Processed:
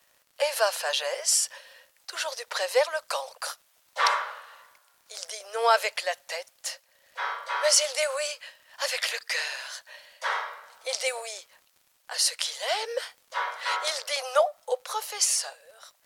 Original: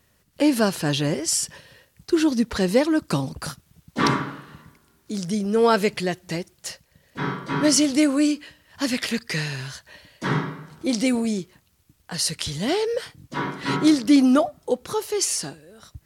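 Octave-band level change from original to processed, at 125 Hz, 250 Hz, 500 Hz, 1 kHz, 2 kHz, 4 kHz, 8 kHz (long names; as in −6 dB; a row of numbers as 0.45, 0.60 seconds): below −40 dB, below −40 dB, −4.5 dB, 0.0 dB, 0.0 dB, 0.0 dB, 0.0 dB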